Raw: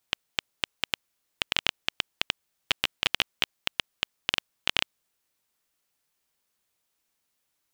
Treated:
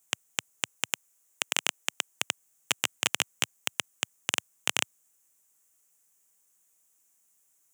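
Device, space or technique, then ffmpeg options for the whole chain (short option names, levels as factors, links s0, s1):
budget condenser microphone: -filter_complex "[0:a]asettb=1/sr,asplit=3[s0][s1][s2];[s0]atrim=end=0.934[s3];[s1]atrim=start=0.93:end=2.15,asetpts=PTS-STARTPTS,afade=t=in:d=0.004:c=qsin,afade=t=out:st=1.216:d=0.004:c=qsin,highpass=260[s4];[s2]atrim=start=2.146[s5];[s3][s4]acrossfade=d=0.004:c1=hsin:c2=qsin[s6];[s6][s5]acrossfade=d=0.004:c1=qsin:c2=hsin,highpass=f=110:w=0.5412,highpass=f=110:w=1.3066,highshelf=f=5600:t=q:w=3:g=8.5"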